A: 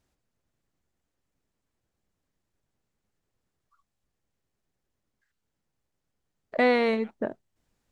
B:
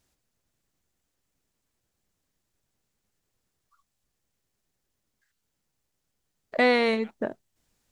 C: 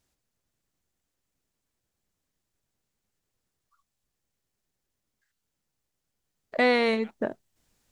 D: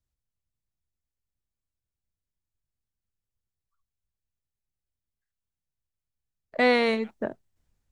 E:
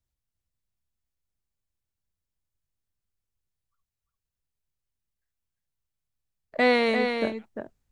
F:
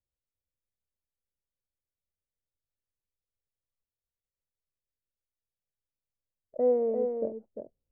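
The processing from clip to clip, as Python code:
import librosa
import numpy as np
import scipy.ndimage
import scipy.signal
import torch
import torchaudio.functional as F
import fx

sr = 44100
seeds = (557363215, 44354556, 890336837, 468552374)

y1 = fx.high_shelf(x, sr, hz=2900.0, db=8.5)
y2 = fx.rider(y1, sr, range_db=3, speed_s=2.0)
y3 = fx.band_widen(y2, sr, depth_pct=40)
y4 = y3 + 10.0 ** (-6.0 / 20.0) * np.pad(y3, (int(347 * sr / 1000.0), 0))[:len(y3)]
y5 = fx.ladder_lowpass(y4, sr, hz=600.0, resonance_pct=60)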